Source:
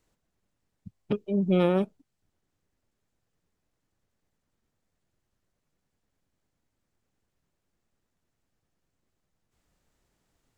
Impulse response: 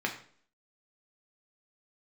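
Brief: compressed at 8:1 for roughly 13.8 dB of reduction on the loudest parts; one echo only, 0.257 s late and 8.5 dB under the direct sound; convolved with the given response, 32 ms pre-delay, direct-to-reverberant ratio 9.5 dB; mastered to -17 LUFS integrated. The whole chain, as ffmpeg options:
-filter_complex "[0:a]acompressor=threshold=-33dB:ratio=8,aecho=1:1:257:0.376,asplit=2[a][b];[1:a]atrim=start_sample=2205,adelay=32[c];[b][c]afir=irnorm=-1:irlink=0,volume=-17dB[d];[a][d]amix=inputs=2:normalize=0,volume=21.5dB"

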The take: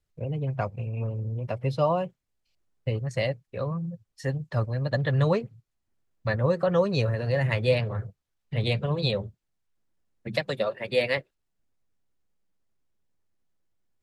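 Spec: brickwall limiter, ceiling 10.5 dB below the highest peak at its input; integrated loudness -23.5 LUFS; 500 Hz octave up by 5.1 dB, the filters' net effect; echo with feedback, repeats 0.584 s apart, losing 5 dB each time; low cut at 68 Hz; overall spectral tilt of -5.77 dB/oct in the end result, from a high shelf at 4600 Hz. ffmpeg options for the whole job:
-af "highpass=68,equalizer=f=500:t=o:g=5.5,highshelf=f=4.6k:g=6.5,alimiter=limit=-18dB:level=0:latency=1,aecho=1:1:584|1168|1752|2336|2920|3504|4088:0.562|0.315|0.176|0.0988|0.0553|0.031|0.0173,volume=5dB"

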